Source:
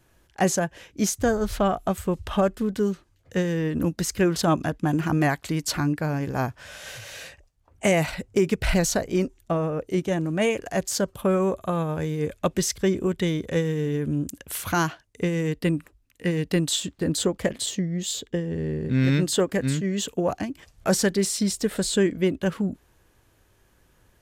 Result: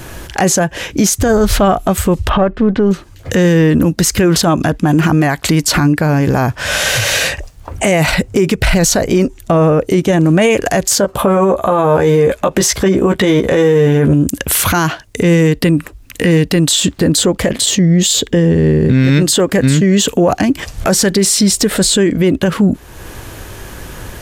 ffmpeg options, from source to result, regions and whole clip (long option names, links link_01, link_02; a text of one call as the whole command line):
ffmpeg -i in.wav -filter_complex "[0:a]asettb=1/sr,asplit=3[link_01][link_02][link_03];[link_01]atrim=end=2.294[link_04];[link_02]atrim=start=2.29:end=2.91,asetpts=PTS-STARTPTS,afade=type=in:duration=0.004:curve=qsin,afade=type=out:start_time=0.616:duration=0.004:curve=qsin,aeval=exprs='if(lt(val(0),0),0.708*val(0),val(0))':channel_layout=same,lowpass=2900,aemphasis=mode=reproduction:type=cd[link_05];[link_03]atrim=start=2.906[link_06];[link_04][link_05]acrossfade=duration=0.004:curve1=hsin:curve2=qsin[link_07];[link_07][link_06]acrossfade=duration=0.004:curve1=qsin:curve2=hsin,asettb=1/sr,asplit=3[link_08][link_09][link_10];[link_08]atrim=end=11.004[link_11];[link_09]atrim=start=11:end=14.14,asetpts=PTS-STARTPTS,afade=type=in:duration=0.004:curve=qsin,afade=type=out:start_time=3.136:duration=0.004:curve=qsin,equalizer=frequency=800:width=0.56:gain=10,asplit=2[link_12][link_13];[link_13]adelay=15,volume=-5.5dB[link_14];[link_12][link_14]amix=inputs=2:normalize=0,atrim=end_sample=138474[link_15];[link_10]atrim=start=14.136[link_16];[link_11][link_15]acrossfade=duration=0.004:curve1=hsin:curve2=qsin[link_17];[link_17][link_16]acrossfade=duration=0.004:curve1=qsin:curve2=hsin,acompressor=threshold=-47dB:ratio=2,alimiter=level_in=34dB:limit=-1dB:release=50:level=0:latency=1,volume=-2.5dB" out.wav